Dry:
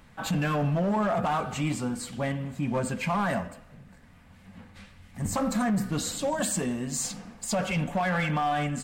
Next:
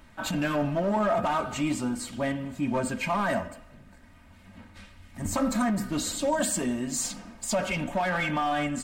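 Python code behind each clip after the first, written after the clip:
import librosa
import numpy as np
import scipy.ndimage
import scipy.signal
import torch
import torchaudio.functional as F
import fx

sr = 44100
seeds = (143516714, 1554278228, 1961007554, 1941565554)

y = x + 0.53 * np.pad(x, (int(3.2 * sr / 1000.0), 0))[:len(x)]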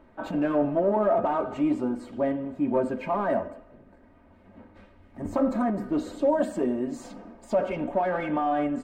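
y = fx.curve_eq(x, sr, hz=(170.0, 390.0, 7300.0), db=(0, 14, -16))
y = F.gain(torch.from_numpy(y), -5.5).numpy()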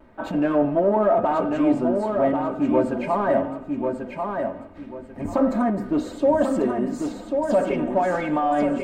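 y = fx.vibrato(x, sr, rate_hz=0.3, depth_cents=10.0)
y = fx.echo_feedback(y, sr, ms=1091, feedback_pct=27, wet_db=-5)
y = F.gain(torch.from_numpy(y), 4.0).numpy()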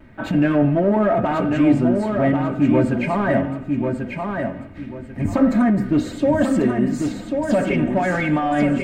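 y = fx.graphic_eq(x, sr, hz=(125, 500, 1000, 2000), db=(10, -5, -7, 6))
y = F.gain(torch.from_numpy(y), 5.0).numpy()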